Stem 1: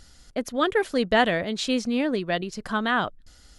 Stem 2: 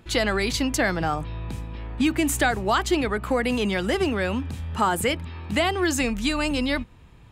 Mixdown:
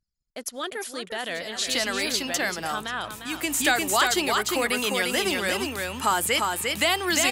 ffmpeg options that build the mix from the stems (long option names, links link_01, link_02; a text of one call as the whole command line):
ffmpeg -i stem1.wav -i stem2.wav -filter_complex "[0:a]alimiter=limit=-17dB:level=0:latency=1:release=14,volume=-5.5dB,asplit=3[link_01][link_02][link_03];[link_02]volume=-8.5dB[link_04];[1:a]acrossover=split=6300[link_05][link_06];[link_06]acompressor=threshold=-43dB:ratio=4:attack=1:release=60[link_07];[link_05][link_07]amix=inputs=2:normalize=0,adelay=1250,volume=-1dB,asplit=2[link_08][link_09];[link_09]volume=-3.5dB[link_10];[link_03]apad=whole_len=377849[link_11];[link_08][link_11]sidechaincompress=threshold=-54dB:ratio=3:attack=5.4:release=246[link_12];[link_04][link_10]amix=inputs=2:normalize=0,aecho=0:1:351:1[link_13];[link_01][link_12][link_13]amix=inputs=3:normalize=0,agate=range=-7dB:threshold=-49dB:ratio=16:detection=peak,anlmdn=0.000251,aemphasis=mode=production:type=riaa" out.wav